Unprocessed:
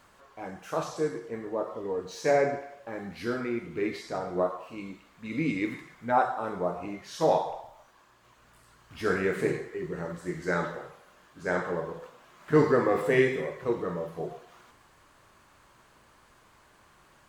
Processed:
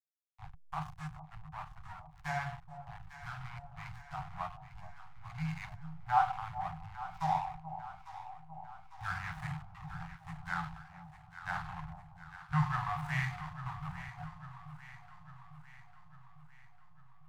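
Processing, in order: hysteresis with a dead band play -28 dBFS; Chebyshev band-stop 160–750 Hz, order 5; treble shelf 2.1 kHz -8.5 dB; on a send: echo whose repeats swap between lows and highs 425 ms, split 830 Hz, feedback 75%, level -10 dB

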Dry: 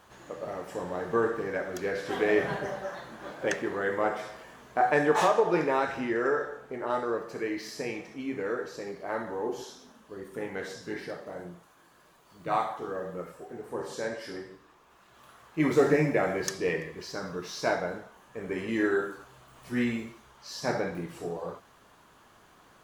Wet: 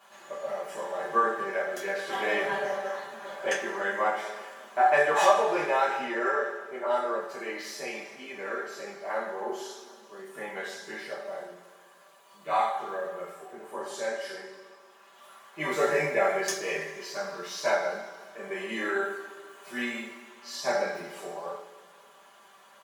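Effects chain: high-pass 480 Hz 12 dB/octave; comb 5.1 ms; two-slope reverb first 0.25 s, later 2 s, from -18 dB, DRR -6 dB; trim -5 dB

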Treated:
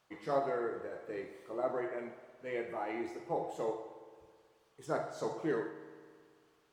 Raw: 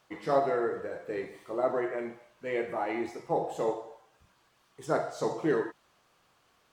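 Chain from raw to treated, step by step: spring tank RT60 2 s, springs 54 ms, chirp 50 ms, DRR 11 dB; trim -6.5 dB

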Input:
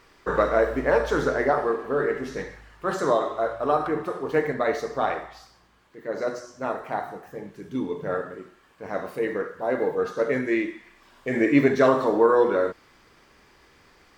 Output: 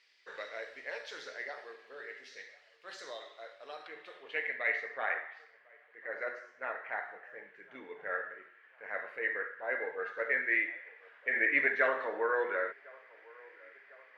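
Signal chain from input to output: band-pass sweep 4.8 kHz -> 1.6 kHz, 3.73–5.13 s; FFT filter 270 Hz 0 dB, 520 Hz +8 dB, 1.2 kHz -3 dB, 2 kHz +11 dB, 5.5 kHz -4 dB; feedback echo behind a band-pass 1052 ms, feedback 58%, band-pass 760 Hz, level -23 dB; trim -3.5 dB

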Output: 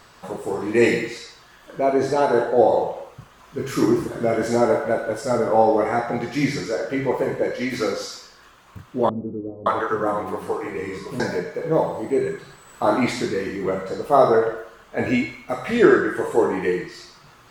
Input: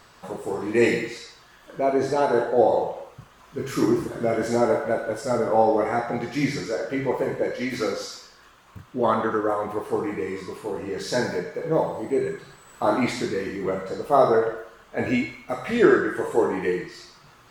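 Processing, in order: 9.09–11.20 s: bands offset in time lows, highs 570 ms, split 350 Hz; trim +2.5 dB

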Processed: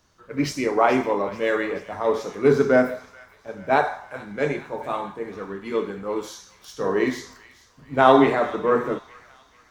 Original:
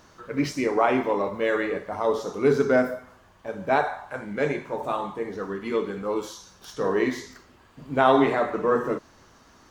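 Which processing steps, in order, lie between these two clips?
on a send: feedback echo behind a high-pass 435 ms, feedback 64%, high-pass 1.5 kHz, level -12.5 dB; on the sum: three bands expanded up and down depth 40%; trim +1.5 dB

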